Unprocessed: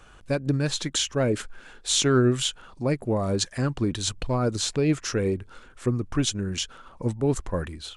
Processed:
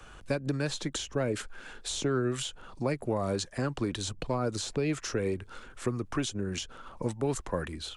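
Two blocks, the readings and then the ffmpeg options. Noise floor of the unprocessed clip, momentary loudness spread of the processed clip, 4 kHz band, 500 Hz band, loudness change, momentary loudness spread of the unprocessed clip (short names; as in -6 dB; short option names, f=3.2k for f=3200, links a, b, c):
-51 dBFS, 6 LU, -9.0 dB, -5.5 dB, -7.0 dB, 9 LU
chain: -filter_complex "[0:a]acrossover=split=140|350|830[a][b][c][d];[a]acompressor=threshold=-42dB:ratio=4[e];[b]acompressor=threshold=-38dB:ratio=4[f];[c]acompressor=threshold=-34dB:ratio=4[g];[d]acompressor=threshold=-38dB:ratio=4[h];[e][f][g][h]amix=inputs=4:normalize=0,volume=1.5dB"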